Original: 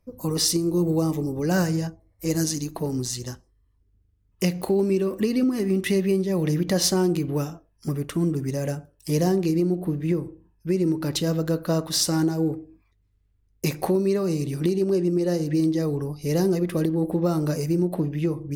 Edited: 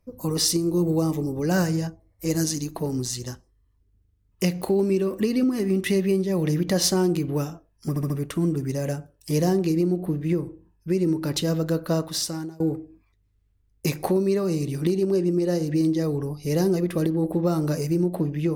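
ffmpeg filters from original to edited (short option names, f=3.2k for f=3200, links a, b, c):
-filter_complex "[0:a]asplit=5[a][b][c][d][e];[a]atrim=end=7.962[f];[b]atrim=start=7.888:end=7.962[g];[c]atrim=start=7.888:end=7.962[h];[d]atrim=start=7.888:end=12.39,asetpts=PTS-STARTPTS,afade=t=out:st=3.822:d=0.68:silence=0.0668344[i];[e]atrim=start=12.39,asetpts=PTS-STARTPTS,afade=t=in:d=0.004:c=hsin:silence=0.0668344[j];[f][g]acrossfade=d=0.004:c1=hsin:c2=hsin[k];[k][h]acrossfade=d=0.004:c1=hsin:c2=hsin[l];[i][j]concat=n=2:v=0:a=1[m];[l][m]acrossfade=d=0.004:c1=hsin:c2=hsin"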